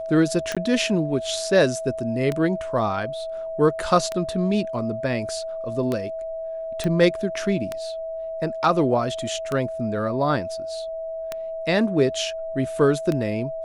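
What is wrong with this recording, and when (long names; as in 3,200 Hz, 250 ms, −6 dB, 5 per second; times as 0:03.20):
scratch tick 33 1/3 rpm −12 dBFS
whistle 650 Hz −28 dBFS
0:00.55–0:00.57: drop-out 16 ms
0:06.84: click −13 dBFS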